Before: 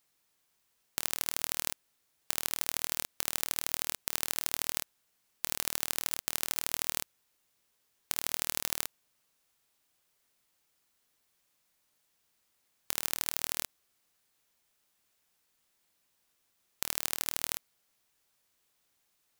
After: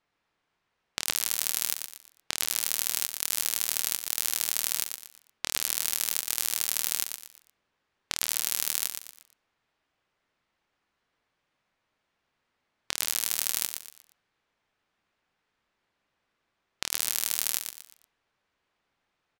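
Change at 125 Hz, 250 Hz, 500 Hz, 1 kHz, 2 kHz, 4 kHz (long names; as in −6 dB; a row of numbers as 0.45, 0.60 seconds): −1.5, −1.5, −1.0, +0.5, +3.0, +6.0 decibels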